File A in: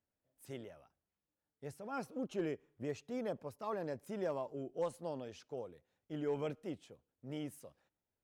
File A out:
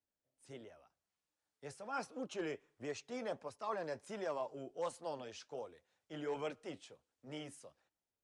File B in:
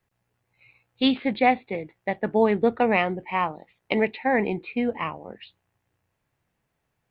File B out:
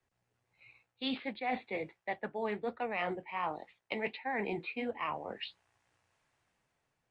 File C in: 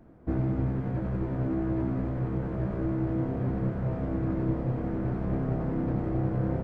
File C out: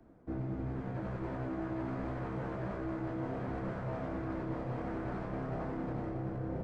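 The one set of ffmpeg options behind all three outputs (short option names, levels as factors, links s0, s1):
-filter_complex "[0:a]acrossover=split=170|670[s0][s1][s2];[s2]dynaudnorm=f=280:g=7:m=2.82[s3];[s0][s1][s3]amix=inputs=3:normalize=0,aemphasis=mode=reproduction:type=50kf,aresample=22050,aresample=44100,flanger=delay=2.6:depth=6.3:regen=-64:speed=1.4:shape=sinusoidal,bass=f=250:g=-3,treble=f=4000:g=9,areverse,acompressor=threshold=0.02:ratio=5,areverse"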